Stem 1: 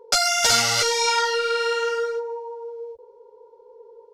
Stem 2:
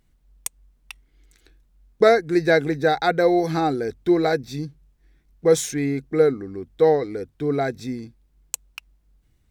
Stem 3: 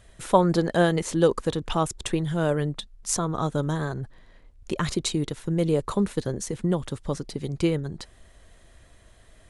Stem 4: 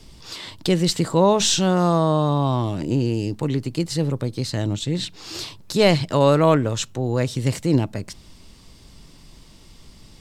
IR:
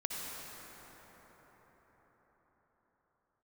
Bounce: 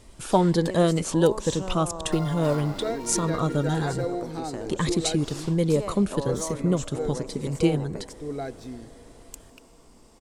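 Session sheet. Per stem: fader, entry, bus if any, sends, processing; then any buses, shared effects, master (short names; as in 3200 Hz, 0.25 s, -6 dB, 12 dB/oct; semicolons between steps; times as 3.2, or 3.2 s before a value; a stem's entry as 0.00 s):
-15.5 dB, 2.00 s, no send, median filter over 15 samples
-19.5 dB, 0.80 s, send -16.5 dB, bell 1800 Hz -6 dB; AGC gain up to 11.5 dB
+1.5 dB, 0.00 s, no send, cascading phaser rising 1.2 Hz
-12.5 dB, 0.00 s, send -10.5 dB, graphic EQ 125/250/500/1000/4000/8000 Hz -9/+6/+6/+9/-6/+8 dB; compressor 5:1, threshold -22 dBFS, peak gain reduction 16.5 dB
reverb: on, RT60 5.7 s, pre-delay 52 ms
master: dry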